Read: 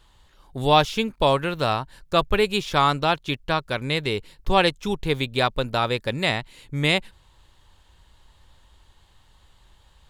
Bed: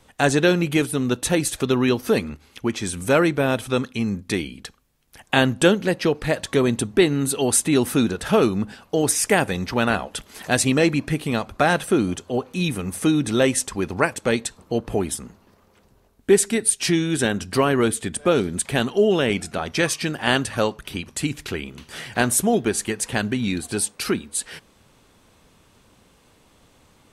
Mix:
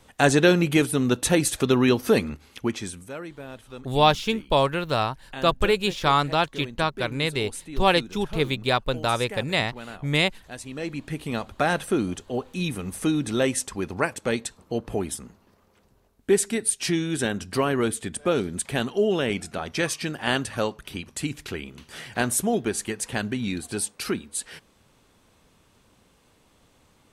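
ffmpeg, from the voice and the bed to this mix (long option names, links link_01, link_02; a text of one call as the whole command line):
ffmpeg -i stem1.wav -i stem2.wav -filter_complex "[0:a]adelay=3300,volume=-1dB[link_01];[1:a]volume=14.5dB,afade=type=out:start_time=2.52:duration=0.57:silence=0.112202,afade=type=in:start_time=10.69:duration=0.76:silence=0.188365[link_02];[link_01][link_02]amix=inputs=2:normalize=0" out.wav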